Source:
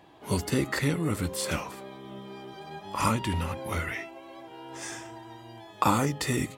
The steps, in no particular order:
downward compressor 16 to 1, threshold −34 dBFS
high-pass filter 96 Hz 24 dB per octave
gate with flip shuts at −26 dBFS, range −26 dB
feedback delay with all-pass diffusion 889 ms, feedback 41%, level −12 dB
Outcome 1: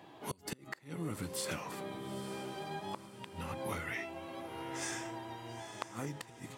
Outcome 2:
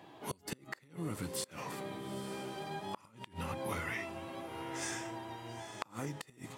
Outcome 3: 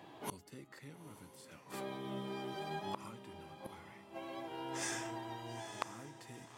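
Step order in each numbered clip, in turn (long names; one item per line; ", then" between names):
downward compressor, then high-pass filter, then gate with flip, then feedback delay with all-pass diffusion
high-pass filter, then downward compressor, then feedback delay with all-pass diffusion, then gate with flip
high-pass filter, then gate with flip, then downward compressor, then feedback delay with all-pass diffusion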